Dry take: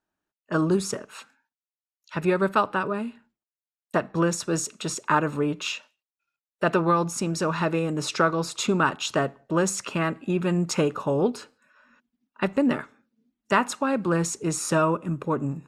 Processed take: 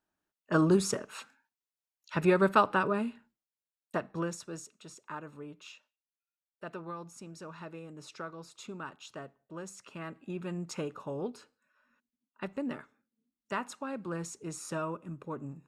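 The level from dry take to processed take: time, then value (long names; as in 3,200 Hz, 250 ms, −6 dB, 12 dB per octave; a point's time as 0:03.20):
0:03.03 −2 dB
0:04.22 −11 dB
0:04.77 −20 dB
0:09.76 −20 dB
0:10.25 −13.5 dB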